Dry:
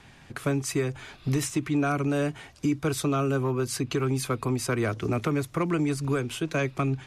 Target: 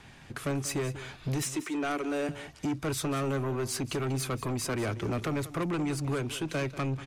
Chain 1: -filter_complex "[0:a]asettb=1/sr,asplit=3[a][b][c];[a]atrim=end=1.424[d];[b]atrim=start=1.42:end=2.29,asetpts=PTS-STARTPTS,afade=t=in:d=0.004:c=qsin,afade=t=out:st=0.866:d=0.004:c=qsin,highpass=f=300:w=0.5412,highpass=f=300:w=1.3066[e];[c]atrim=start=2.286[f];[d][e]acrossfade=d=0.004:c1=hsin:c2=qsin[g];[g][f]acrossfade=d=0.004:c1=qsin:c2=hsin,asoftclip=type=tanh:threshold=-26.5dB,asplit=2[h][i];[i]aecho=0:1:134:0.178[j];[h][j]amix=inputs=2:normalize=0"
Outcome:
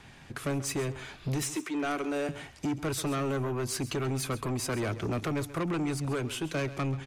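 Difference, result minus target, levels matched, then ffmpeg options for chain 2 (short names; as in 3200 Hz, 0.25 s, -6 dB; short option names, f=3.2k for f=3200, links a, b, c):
echo 55 ms early
-filter_complex "[0:a]asettb=1/sr,asplit=3[a][b][c];[a]atrim=end=1.424[d];[b]atrim=start=1.42:end=2.29,asetpts=PTS-STARTPTS,afade=t=in:d=0.004:c=qsin,afade=t=out:st=0.866:d=0.004:c=qsin,highpass=f=300:w=0.5412,highpass=f=300:w=1.3066[e];[c]atrim=start=2.286[f];[d][e]acrossfade=d=0.004:c1=hsin:c2=qsin[g];[g][f]acrossfade=d=0.004:c1=qsin:c2=hsin,asoftclip=type=tanh:threshold=-26.5dB,asplit=2[h][i];[i]aecho=0:1:189:0.178[j];[h][j]amix=inputs=2:normalize=0"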